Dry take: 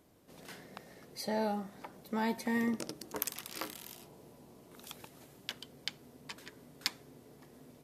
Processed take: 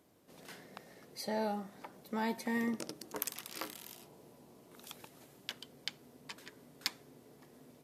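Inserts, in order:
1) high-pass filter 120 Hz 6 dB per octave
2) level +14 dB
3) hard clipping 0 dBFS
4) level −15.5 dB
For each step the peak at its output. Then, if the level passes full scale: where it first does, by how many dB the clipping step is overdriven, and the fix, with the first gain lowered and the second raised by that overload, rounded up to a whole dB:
−10.5, +3.5, 0.0, −15.5 dBFS
step 2, 3.5 dB
step 2 +10 dB, step 4 −11.5 dB

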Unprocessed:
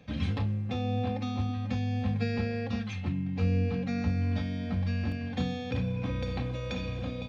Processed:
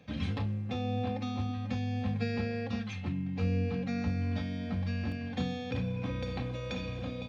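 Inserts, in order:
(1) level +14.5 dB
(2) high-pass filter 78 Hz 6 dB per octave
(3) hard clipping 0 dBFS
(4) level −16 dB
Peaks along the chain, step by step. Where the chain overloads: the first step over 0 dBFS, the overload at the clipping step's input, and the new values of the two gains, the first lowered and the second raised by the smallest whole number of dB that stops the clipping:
−3.0, −4.0, −4.0, −20.0 dBFS
no step passes full scale

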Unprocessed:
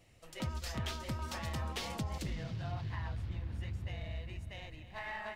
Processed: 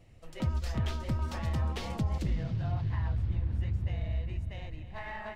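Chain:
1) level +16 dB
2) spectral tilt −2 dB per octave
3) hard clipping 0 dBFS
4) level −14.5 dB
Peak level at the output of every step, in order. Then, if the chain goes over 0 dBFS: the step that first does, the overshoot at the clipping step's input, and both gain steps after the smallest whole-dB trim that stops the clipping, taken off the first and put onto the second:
−9.0, −5.5, −5.5, −20.0 dBFS
no step passes full scale

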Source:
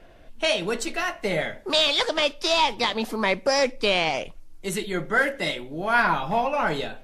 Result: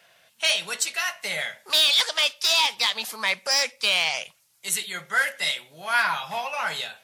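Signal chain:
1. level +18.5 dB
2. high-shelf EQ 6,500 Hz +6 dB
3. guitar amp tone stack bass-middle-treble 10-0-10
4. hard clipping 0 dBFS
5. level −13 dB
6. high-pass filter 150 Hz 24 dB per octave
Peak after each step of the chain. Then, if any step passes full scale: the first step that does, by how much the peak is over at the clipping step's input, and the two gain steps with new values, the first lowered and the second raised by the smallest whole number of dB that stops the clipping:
+9.5, +10.5, +9.5, 0.0, −13.0, −11.0 dBFS
step 1, 9.5 dB
step 1 +8.5 dB, step 5 −3 dB

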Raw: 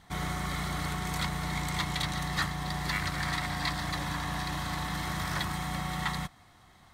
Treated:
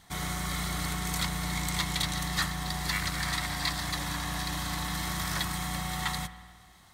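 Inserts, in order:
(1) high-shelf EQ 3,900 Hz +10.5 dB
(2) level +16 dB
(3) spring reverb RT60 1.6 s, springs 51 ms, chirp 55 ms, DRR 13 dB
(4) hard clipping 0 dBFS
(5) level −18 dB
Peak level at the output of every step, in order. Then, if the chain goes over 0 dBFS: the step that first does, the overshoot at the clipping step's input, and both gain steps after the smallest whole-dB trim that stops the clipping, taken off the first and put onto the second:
−12.5, +3.5, +3.5, 0.0, −18.0 dBFS
step 2, 3.5 dB
step 2 +12 dB, step 5 −14 dB

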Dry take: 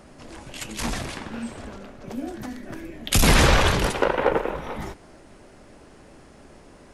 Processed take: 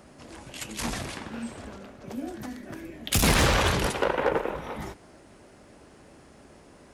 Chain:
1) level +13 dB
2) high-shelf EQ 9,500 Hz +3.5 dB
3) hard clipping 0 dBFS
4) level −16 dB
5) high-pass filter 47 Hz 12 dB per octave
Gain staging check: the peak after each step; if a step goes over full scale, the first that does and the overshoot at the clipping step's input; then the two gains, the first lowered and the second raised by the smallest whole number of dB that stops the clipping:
+7.0, +7.0, 0.0, −16.0, −10.0 dBFS
step 1, 7.0 dB
step 1 +6 dB, step 4 −9 dB

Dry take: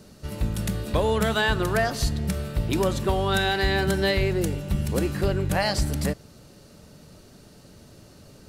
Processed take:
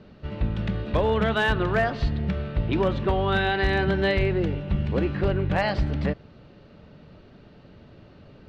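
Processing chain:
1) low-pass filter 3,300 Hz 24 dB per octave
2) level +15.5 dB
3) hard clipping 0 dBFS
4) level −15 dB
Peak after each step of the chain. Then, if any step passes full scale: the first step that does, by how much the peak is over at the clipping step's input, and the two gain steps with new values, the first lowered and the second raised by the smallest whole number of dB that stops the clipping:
−11.0, +4.5, 0.0, −15.0 dBFS
step 2, 4.5 dB
step 2 +10.5 dB, step 4 −10 dB

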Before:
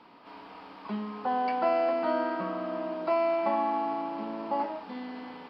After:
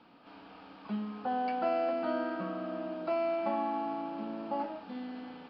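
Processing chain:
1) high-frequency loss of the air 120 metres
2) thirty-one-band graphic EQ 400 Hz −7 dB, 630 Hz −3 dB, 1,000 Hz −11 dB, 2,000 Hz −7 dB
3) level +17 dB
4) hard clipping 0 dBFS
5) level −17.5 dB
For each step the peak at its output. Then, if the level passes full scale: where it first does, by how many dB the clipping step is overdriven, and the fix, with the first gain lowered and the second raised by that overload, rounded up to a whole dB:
−16.0, −18.5, −1.5, −1.5, −19.0 dBFS
no step passes full scale

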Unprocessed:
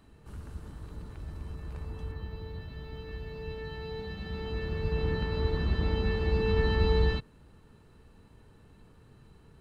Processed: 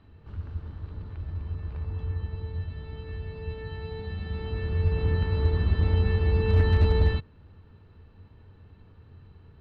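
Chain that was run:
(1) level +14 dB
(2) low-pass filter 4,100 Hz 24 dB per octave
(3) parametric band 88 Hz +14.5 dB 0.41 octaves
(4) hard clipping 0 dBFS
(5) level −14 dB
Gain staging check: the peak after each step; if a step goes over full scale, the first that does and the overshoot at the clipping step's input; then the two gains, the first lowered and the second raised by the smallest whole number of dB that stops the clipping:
+1.0, +1.0, +5.5, 0.0, −14.0 dBFS
step 1, 5.5 dB
step 1 +8 dB, step 5 −8 dB

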